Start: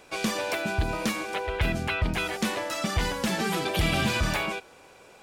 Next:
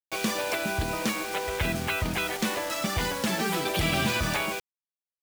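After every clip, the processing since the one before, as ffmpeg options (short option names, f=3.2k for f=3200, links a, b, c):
-af "highpass=f=90:p=1,acrusher=bits=5:mix=0:aa=0.000001"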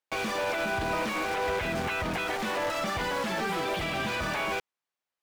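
-filter_complex "[0:a]alimiter=level_in=0.5dB:limit=-24dB:level=0:latency=1,volume=-0.5dB,asplit=2[a][b];[b]highpass=f=720:p=1,volume=17dB,asoftclip=type=tanh:threshold=-24.5dB[c];[a][c]amix=inputs=2:normalize=0,lowpass=f=1.5k:p=1,volume=-6dB,volume=3dB"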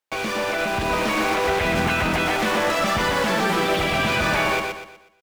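-af "dynaudnorm=f=500:g=3:m=4dB,aecho=1:1:122|244|366|488|610:0.596|0.22|0.0815|0.0302|0.0112,volume=4dB"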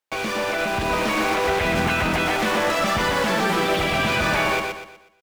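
-af anull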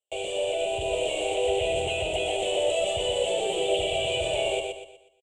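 -af "firequalizer=gain_entry='entry(110,0);entry(230,-24);entry(380,6);entry(650,9);entry(1100,-23);entry(1600,-25);entry(2900,11);entry(5100,-20);entry(7700,14);entry(13000,-22)':delay=0.05:min_phase=1,volume=-8dB"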